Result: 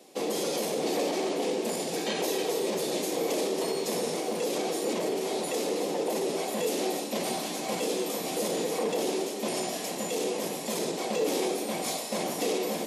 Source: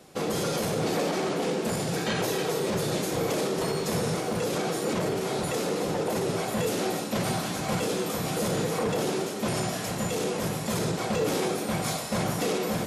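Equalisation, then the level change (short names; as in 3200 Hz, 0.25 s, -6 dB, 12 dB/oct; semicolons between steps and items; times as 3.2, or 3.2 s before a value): HPF 240 Hz 24 dB/oct; bell 1400 Hz -12 dB 0.62 oct; 0.0 dB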